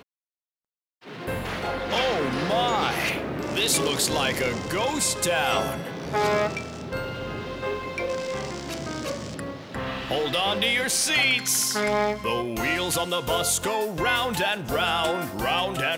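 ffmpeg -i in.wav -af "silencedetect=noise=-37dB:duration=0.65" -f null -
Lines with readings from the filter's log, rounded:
silence_start: 0.00
silence_end: 1.07 | silence_duration: 1.07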